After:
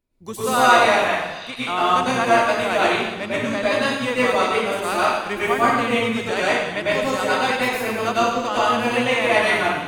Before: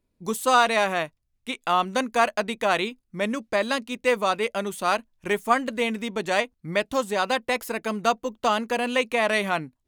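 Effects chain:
parametric band 2,100 Hz +3 dB 2.2 octaves
pitch-shifted copies added −12 semitones −13 dB
echo through a band-pass that steps 714 ms, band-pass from 3,800 Hz, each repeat 0.7 octaves, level −12 dB
dense smooth reverb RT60 1.1 s, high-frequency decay 0.85×, pre-delay 90 ms, DRR −8.5 dB
level −5.5 dB

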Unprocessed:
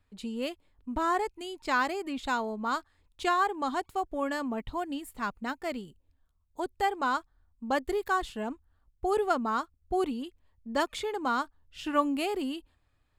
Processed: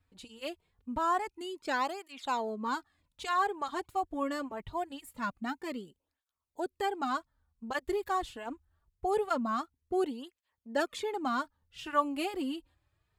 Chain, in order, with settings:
through-zero flanger with one copy inverted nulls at 0.24 Hz, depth 5.1 ms

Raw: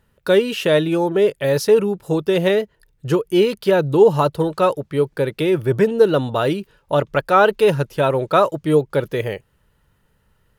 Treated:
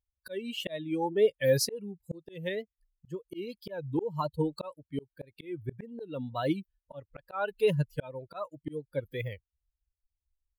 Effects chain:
spectral dynamics exaggerated over time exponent 2
volume swells 639 ms
tape wow and flutter 79 cents

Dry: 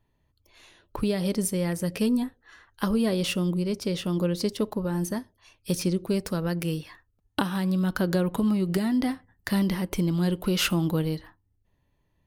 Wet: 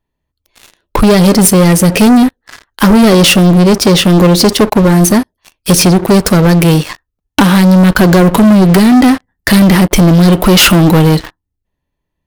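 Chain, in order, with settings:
parametric band 110 Hz −9 dB 0.38 octaves
leveller curve on the samples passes 5
level +8 dB

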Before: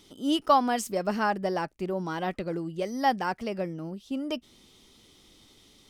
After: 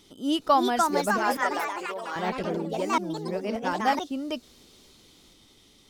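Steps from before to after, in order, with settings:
0:01.18–0:02.16: high-pass filter 620 Hz 12 dB per octave
delay with pitch and tempo change per echo 375 ms, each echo +3 semitones, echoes 3
0:02.98–0:03.99: reverse

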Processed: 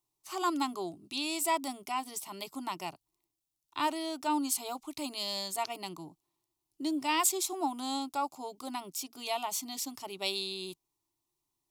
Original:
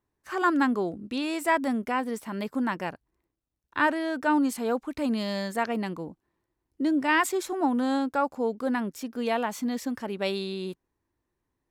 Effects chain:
tilt shelving filter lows −8 dB, about 1,500 Hz
phaser with its sweep stopped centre 330 Hz, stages 8

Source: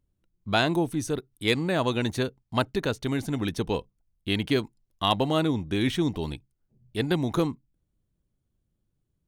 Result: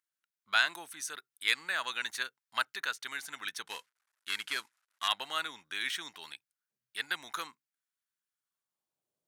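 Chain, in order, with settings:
0:03.67–0:05.08: variable-slope delta modulation 64 kbit/s
high-pass filter sweep 1,500 Hz → 600 Hz, 0:08.34–0:09.11
bass and treble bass +9 dB, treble +5 dB
level −5.5 dB

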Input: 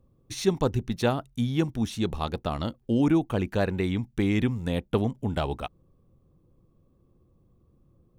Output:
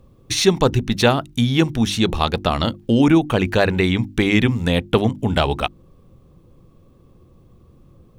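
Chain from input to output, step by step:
parametric band 3,000 Hz +6 dB 2.3 octaves
mains-hum notches 50/100/150/200/250/300/350 Hz
in parallel at +1 dB: downward compressor, threshold −34 dBFS, peak gain reduction 16.5 dB
on the sum: level +6.5 dB

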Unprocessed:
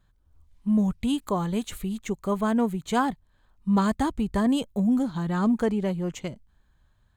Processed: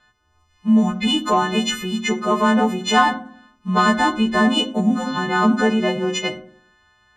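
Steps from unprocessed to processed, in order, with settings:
every partial snapped to a pitch grid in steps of 3 semitones
low-pass filter 4,900 Hz 12 dB per octave
low-shelf EQ 84 Hz −10 dB
in parallel at −2 dB: brickwall limiter −21 dBFS, peak gain reduction 9.5 dB
on the sum: floating-point word with a short mantissa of 8 bits
mid-hump overdrive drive 9 dB, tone 3,700 Hz, clips at −9 dBFS
on a send at −6.5 dB: convolution reverb RT60 0.60 s, pre-delay 5 ms
on the sum: level +3 dB

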